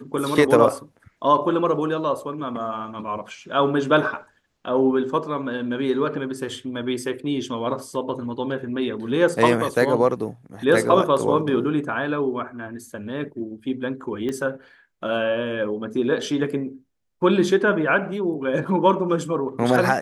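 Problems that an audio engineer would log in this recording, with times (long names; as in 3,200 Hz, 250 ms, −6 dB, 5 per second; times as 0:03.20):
0:14.29: click −17 dBFS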